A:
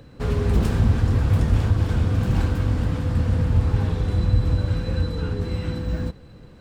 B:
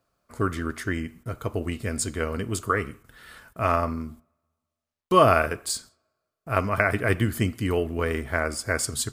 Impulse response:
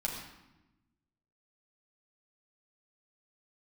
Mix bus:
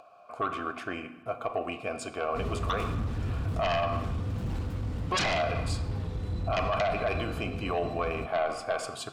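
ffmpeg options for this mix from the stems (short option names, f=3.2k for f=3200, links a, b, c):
-filter_complex "[0:a]bandreject=f=1.6k:w=12,volume=16.5dB,asoftclip=hard,volume=-16.5dB,adelay=2150,volume=-10.5dB[a];[1:a]asplit=3[b][c][d];[b]bandpass=f=730:t=q:w=8,volume=0dB[e];[c]bandpass=f=1.09k:t=q:w=8,volume=-6dB[f];[d]bandpass=f=2.44k:t=q:w=8,volume=-9dB[g];[e][f][g]amix=inputs=3:normalize=0,aeval=exprs='0.106*sin(PI/2*2.51*val(0)/0.106)':c=same,volume=0.5dB,asplit=2[h][i];[i]volume=-9dB[j];[2:a]atrim=start_sample=2205[k];[j][k]afir=irnorm=-1:irlink=0[l];[a][h][l]amix=inputs=3:normalize=0,acompressor=mode=upward:threshold=-42dB:ratio=2.5,alimiter=limit=-21dB:level=0:latency=1:release=29"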